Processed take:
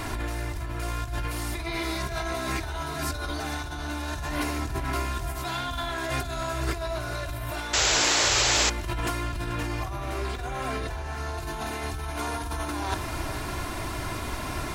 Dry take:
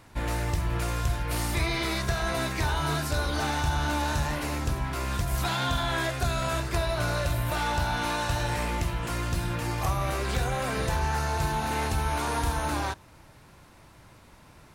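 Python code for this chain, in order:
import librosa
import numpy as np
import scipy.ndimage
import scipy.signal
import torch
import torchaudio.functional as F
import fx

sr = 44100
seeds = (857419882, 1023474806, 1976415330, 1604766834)

y = fx.over_compress(x, sr, threshold_db=-40.0, ratio=-1.0)
y = y + 0.51 * np.pad(y, (int(2.9 * sr / 1000.0), 0))[:len(y)]
y = y + 10.0 ** (-12.0 / 20.0) * np.pad(y, (int(436 * sr / 1000.0), 0))[:len(y)]
y = fx.spec_paint(y, sr, seeds[0], shape='noise', start_s=7.73, length_s=0.97, low_hz=320.0, high_hz=7800.0, level_db=-31.0)
y = fx.high_shelf(y, sr, hz=5900.0, db=-6.0, at=(9.23, 11.38))
y = y * librosa.db_to_amplitude(8.0)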